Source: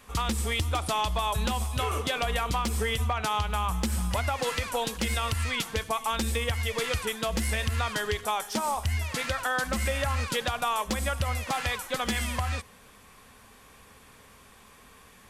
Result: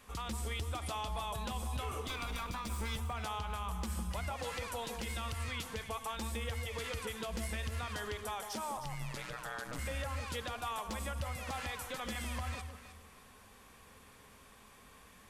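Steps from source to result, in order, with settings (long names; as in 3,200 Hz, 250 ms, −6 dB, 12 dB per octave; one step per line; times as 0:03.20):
0:02.08–0:02.96: lower of the sound and its delayed copy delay 0.83 ms
downward compressor, threshold −29 dBFS, peak gain reduction 6 dB
brickwall limiter −26 dBFS, peak gain reduction 5.5 dB
0:08.77–0:09.79: ring modulation 61 Hz
delay that swaps between a low-pass and a high-pass 156 ms, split 1,100 Hz, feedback 50%, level −5.5 dB
level −5.5 dB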